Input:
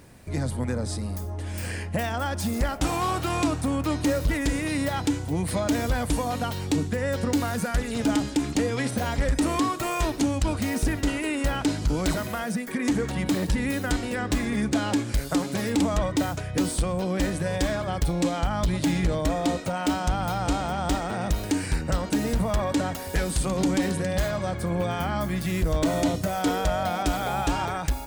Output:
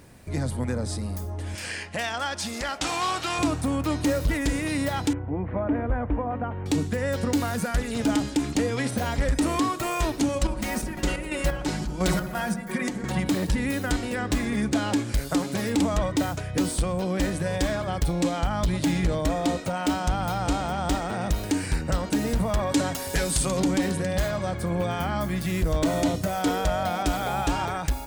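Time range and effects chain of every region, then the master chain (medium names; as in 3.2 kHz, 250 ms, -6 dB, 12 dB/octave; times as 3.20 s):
1.55–3.39 s: low-pass 5.3 kHz + tilt EQ +3.5 dB/octave
5.13–6.66 s: Bessel low-pass 1.3 kHz, order 8 + peaking EQ 160 Hz -12 dB 0.26 oct
10.28–13.20 s: comb 5.5 ms, depth 69% + square tremolo 2.9 Hz, depth 65%, duty 55% + feedback echo behind a low-pass 71 ms, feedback 66%, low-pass 1.2 kHz, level -8.5 dB
22.71–23.60 s: peaking EQ 7.7 kHz +6 dB 2.4 oct + comb 7.3 ms, depth 31%
whole clip: none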